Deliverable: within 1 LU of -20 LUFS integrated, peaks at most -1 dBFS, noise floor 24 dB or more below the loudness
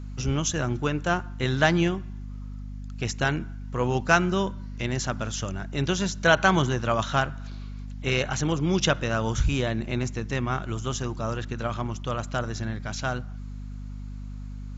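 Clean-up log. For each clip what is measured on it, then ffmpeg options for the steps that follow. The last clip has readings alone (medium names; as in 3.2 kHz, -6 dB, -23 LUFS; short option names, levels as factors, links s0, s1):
hum 50 Hz; highest harmonic 250 Hz; hum level -34 dBFS; loudness -26.5 LUFS; peak level -4.5 dBFS; loudness target -20.0 LUFS
-> -af "bandreject=f=50:t=h:w=6,bandreject=f=100:t=h:w=6,bandreject=f=150:t=h:w=6,bandreject=f=200:t=h:w=6,bandreject=f=250:t=h:w=6"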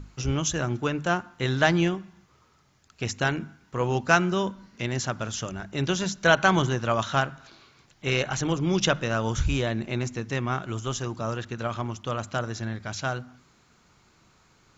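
hum not found; loudness -27.0 LUFS; peak level -4.5 dBFS; loudness target -20.0 LUFS
-> -af "volume=2.24,alimiter=limit=0.891:level=0:latency=1"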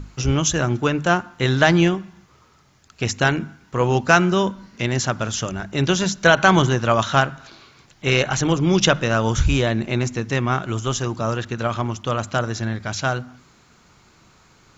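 loudness -20.5 LUFS; peak level -1.0 dBFS; noise floor -55 dBFS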